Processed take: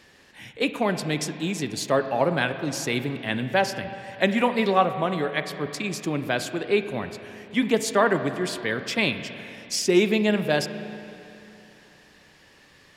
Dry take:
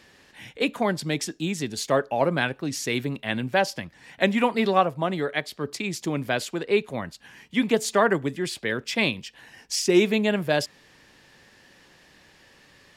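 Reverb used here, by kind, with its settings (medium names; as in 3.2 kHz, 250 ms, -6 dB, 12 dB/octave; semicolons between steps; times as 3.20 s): spring tank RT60 3 s, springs 33/38/46 ms, chirp 30 ms, DRR 9 dB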